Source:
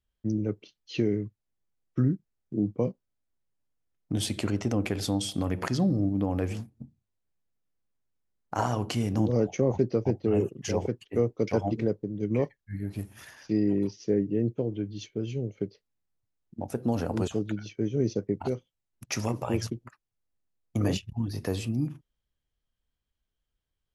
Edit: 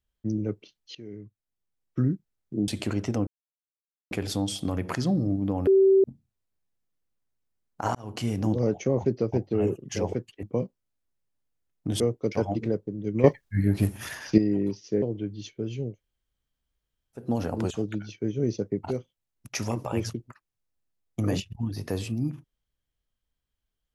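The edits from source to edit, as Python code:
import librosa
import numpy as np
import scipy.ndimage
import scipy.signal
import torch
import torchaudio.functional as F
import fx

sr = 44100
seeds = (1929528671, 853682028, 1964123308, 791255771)

y = fx.edit(x, sr, fx.fade_in_from(start_s=0.95, length_s=1.08, floor_db=-24.0),
    fx.move(start_s=2.68, length_s=1.57, to_s=11.16),
    fx.insert_silence(at_s=4.84, length_s=0.84),
    fx.bleep(start_s=6.4, length_s=0.37, hz=386.0, db=-14.5),
    fx.fade_in_span(start_s=8.68, length_s=0.31),
    fx.clip_gain(start_s=12.4, length_s=1.14, db=11.0),
    fx.cut(start_s=14.18, length_s=0.41),
    fx.room_tone_fill(start_s=15.5, length_s=1.28, crossfade_s=0.16), tone=tone)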